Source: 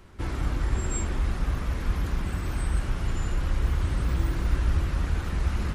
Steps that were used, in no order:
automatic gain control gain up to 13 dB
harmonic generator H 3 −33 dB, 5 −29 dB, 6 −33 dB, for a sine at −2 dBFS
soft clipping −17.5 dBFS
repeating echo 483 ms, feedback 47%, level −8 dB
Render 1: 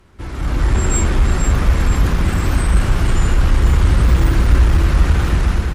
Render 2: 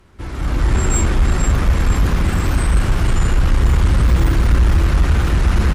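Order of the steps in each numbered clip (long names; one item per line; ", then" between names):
harmonic generator, then soft clipping, then automatic gain control, then repeating echo
repeating echo, then soft clipping, then automatic gain control, then harmonic generator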